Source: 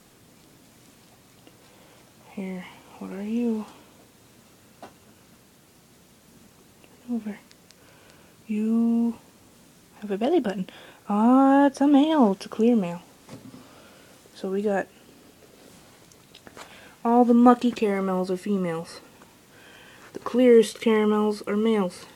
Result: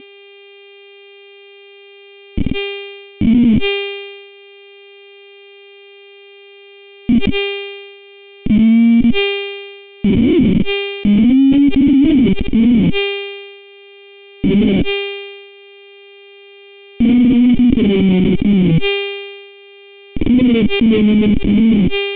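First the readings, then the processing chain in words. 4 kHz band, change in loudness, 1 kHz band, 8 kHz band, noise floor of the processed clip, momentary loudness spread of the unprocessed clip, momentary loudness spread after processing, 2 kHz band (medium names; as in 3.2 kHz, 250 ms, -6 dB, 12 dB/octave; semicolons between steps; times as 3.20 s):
+17.5 dB, +9.5 dB, -7.0 dB, no reading, -40 dBFS, 20 LU, 17 LU, +14.0 dB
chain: square wave that keeps the level; treble shelf 2.2 kHz -4 dB; on a send: reverse echo 49 ms -3 dB; on the sum: Schmitt trigger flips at -23.5 dBFS; mains buzz 400 Hz, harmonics 21, -47 dBFS -2 dB/octave; in parallel at +2.5 dB: compression, threshold -29 dBFS, peak gain reduction 10 dB; on the sum: cascade formant filter i; loudness maximiser +23.5 dB; decay stretcher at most 40 dB/s; trim -4.5 dB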